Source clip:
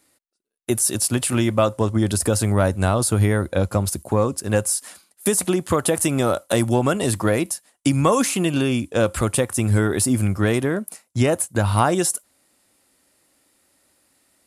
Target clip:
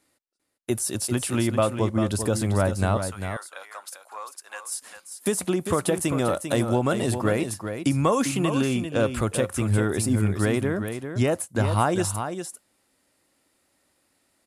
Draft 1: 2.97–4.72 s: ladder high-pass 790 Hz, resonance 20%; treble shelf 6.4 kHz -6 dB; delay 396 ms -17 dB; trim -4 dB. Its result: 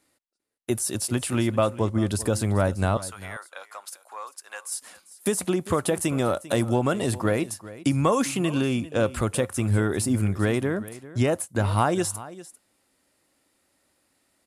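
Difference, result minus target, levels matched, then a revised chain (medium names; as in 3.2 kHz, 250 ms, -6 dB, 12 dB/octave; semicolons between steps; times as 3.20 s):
echo-to-direct -9 dB
2.97–4.72 s: ladder high-pass 790 Hz, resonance 20%; treble shelf 6.4 kHz -6 dB; delay 396 ms -8 dB; trim -4 dB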